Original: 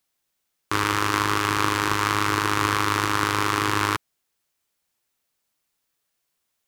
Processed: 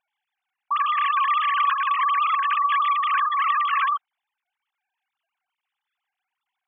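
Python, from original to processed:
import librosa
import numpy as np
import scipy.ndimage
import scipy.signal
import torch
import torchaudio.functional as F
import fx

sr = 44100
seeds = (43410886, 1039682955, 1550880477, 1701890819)

y = fx.sine_speech(x, sr)
y = y * librosa.db_to_amplitude(1.5)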